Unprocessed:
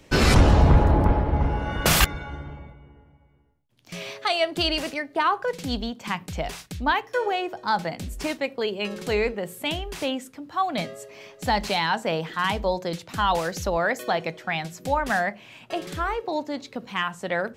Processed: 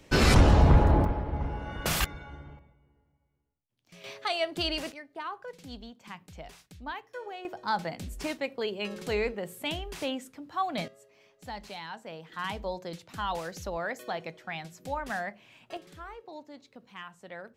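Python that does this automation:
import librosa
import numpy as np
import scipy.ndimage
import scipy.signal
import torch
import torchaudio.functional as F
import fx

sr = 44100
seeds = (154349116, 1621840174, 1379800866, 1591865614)

y = fx.gain(x, sr, db=fx.steps((0.0, -3.0), (1.05, -9.5), (2.59, -16.5), (4.04, -6.5), (4.92, -15.5), (7.45, -5.5), (10.88, -17.0), (12.32, -10.0), (15.77, -17.0)))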